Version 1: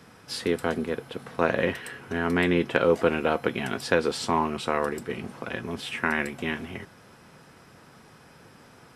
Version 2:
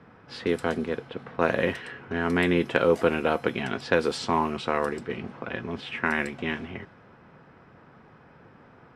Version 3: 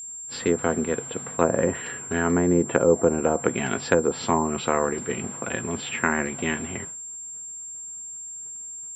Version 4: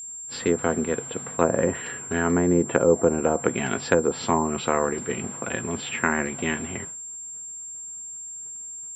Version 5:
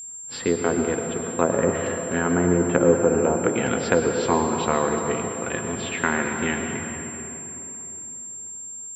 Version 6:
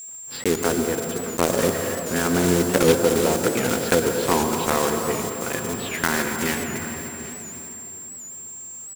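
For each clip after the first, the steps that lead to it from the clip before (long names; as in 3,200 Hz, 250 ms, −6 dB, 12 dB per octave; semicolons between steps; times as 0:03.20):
low-pass that shuts in the quiet parts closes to 1,800 Hz, open at −19.5 dBFS
downward expander −40 dBFS; treble cut that deepens with the level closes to 740 Hz, closed at −19 dBFS; steady tone 7,400 Hz −38 dBFS; level +3.5 dB
no processing that can be heard
convolution reverb RT60 3.5 s, pre-delay 98 ms, DRR 4 dB
one scale factor per block 3 bits; single-tap delay 784 ms −18.5 dB; wow of a warped record 78 rpm, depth 100 cents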